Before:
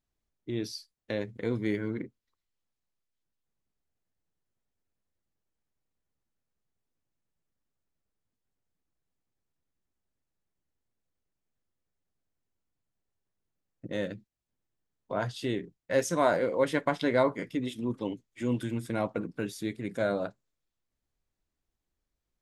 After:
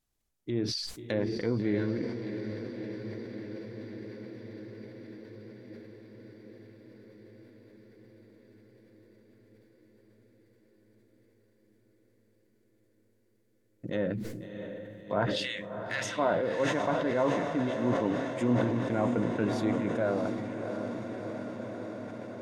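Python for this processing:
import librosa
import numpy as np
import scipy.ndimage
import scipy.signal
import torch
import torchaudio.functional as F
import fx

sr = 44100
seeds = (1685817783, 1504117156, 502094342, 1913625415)

y = fx.highpass(x, sr, hz=1100.0, slope=24, at=(15.25, 16.17), fade=0.02)
y = fx.env_lowpass_down(y, sr, base_hz=1500.0, full_db=-29.5)
y = fx.high_shelf(y, sr, hz=6500.0, db=8.5)
y = fx.rider(y, sr, range_db=4, speed_s=0.5)
y = fx.echo_diffused(y, sr, ms=671, feedback_pct=77, wet_db=-7.5)
y = fx.sustainer(y, sr, db_per_s=33.0)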